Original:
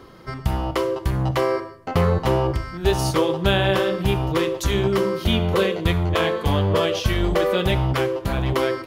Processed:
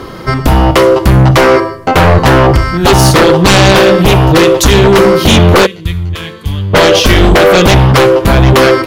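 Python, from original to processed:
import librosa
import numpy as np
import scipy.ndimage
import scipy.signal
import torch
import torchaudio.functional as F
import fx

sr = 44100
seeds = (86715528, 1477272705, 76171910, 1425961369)

y = fx.tone_stack(x, sr, knobs='6-0-2', at=(5.65, 6.73), fade=0.02)
y = fx.fold_sine(y, sr, drive_db=14, ceiling_db=-3.5)
y = y * 10.0 ** (2.0 / 20.0)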